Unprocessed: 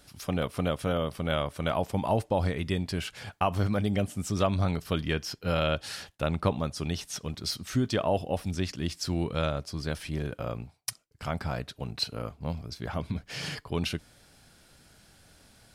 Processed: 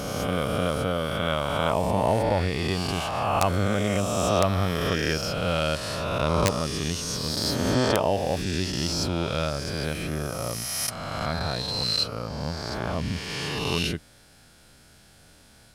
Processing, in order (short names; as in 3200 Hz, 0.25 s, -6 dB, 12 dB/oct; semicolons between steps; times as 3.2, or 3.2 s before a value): spectral swells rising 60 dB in 2.27 s; wrapped overs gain 9.5 dB